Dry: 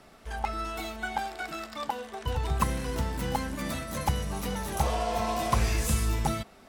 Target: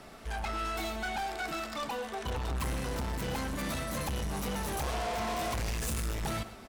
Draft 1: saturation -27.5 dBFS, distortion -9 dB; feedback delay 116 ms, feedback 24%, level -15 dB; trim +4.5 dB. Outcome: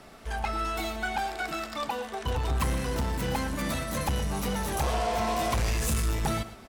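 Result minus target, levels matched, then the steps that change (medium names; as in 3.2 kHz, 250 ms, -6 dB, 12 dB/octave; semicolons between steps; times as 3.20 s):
saturation: distortion -5 dB
change: saturation -36 dBFS, distortion -5 dB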